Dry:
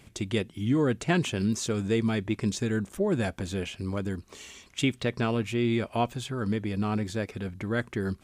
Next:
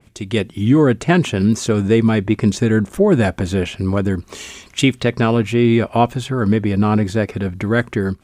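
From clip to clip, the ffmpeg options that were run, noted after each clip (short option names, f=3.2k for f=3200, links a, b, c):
-af "dynaudnorm=f=130:g=5:m=12dB,adynamicequalizer=threshold=0.0112:dfrequency=2300:dqfactor=0.7:tfrequency=2300:tqfactor=0.7:attack=5:release=100:ratio=0.375:range=3:mode=cutabove:tftype=highshelf,volume=1.5dB"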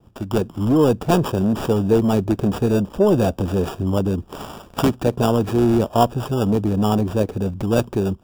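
-filter_complex "[0:a]acrossover=split=390|990[a][b][c];[a]asoftclip=type=tanh:threshold=-15.5dB[d];[c]acrusher=samples=21:mix=1:aa=0.000001[e];[d][b][e]amix=inputs=3:normalize=0"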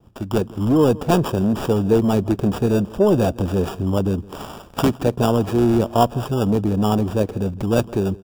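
-filter_complex "[0:a]asplit=2[a][b];[b]adelay=163.3,volume=-21dB,highshelf=f=4k:g=-3.67[c];[a][c]amix=inputs=2:normalize=0"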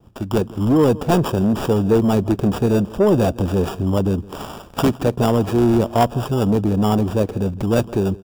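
-af "asoftclip=type=tanh:threshold=-8dB,volume=2dB"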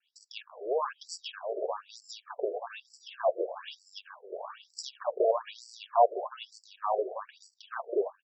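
-af "bandreject=f=6.7k:w=21,aecho=1:1:1.8:0.36,afftfilt=real='re*between(b*sr/1024,480*pow(6200/480,0.5+0.5*sin(2*PI*1.1*pts/sr))/1.41,480*pow(6200/480,0.5+0.5*sin(2*PI*1.1*pts/sr))*1.41)':imag='im*between(b*sr/1024,480*pow(6200/480,0.5+0.5*sin(2*PI*1.1*pts/sr))/1.41,480*pow(6200/480,0.5+0.5*sin(2*PI*1.1*pts/sr))*1.41)':win_size=1024:overlap=0.75,volume=-4dB"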